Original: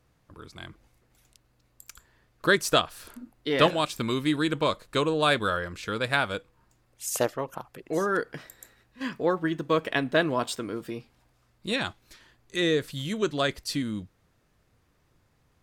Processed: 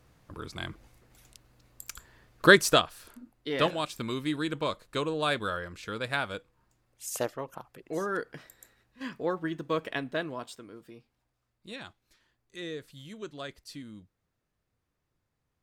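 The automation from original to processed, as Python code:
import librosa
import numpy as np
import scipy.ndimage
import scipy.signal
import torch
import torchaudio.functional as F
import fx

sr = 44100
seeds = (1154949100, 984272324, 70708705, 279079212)

y = fx.gain(x, sr, db=fx.line((2.5, 5.0), (3.03, -5.5), (9.84, -5.5), (10.64, -14.0)))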